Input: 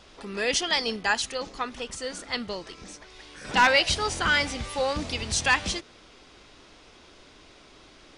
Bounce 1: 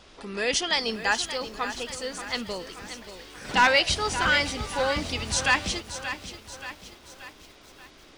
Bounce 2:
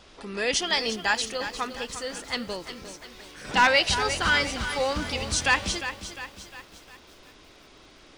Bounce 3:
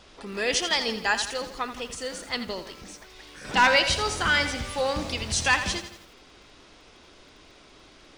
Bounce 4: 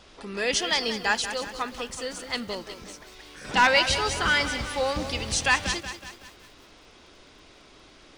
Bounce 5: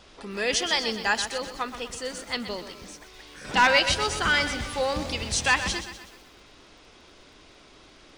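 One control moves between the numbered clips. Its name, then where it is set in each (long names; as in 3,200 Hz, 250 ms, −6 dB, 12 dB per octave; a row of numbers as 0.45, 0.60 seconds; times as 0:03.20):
feedback echo at a low word length, delay time: 579, 353, 83, 186, 125 milliseconds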